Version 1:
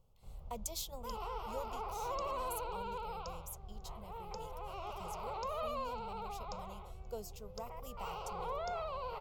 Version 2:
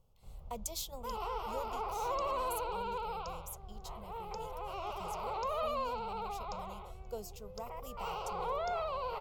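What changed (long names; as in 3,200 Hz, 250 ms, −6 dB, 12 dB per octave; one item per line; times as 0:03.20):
speech: send on
second sound +4.0 dB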